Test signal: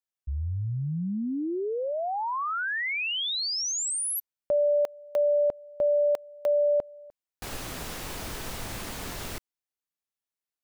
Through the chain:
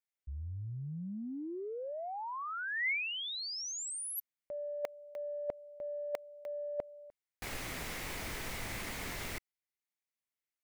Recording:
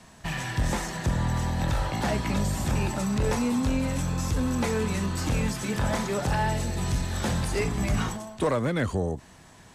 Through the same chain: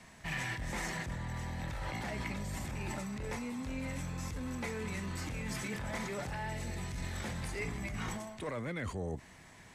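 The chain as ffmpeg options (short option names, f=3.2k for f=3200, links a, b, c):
-af "areverse,acompressor=threshold=-39dB:ratio=10:attack=98:release=30:knee=1:detection=peak,areverse,equalizer=f=2.1k:t=o:w=0.45:g=9,volume=-5.5dB"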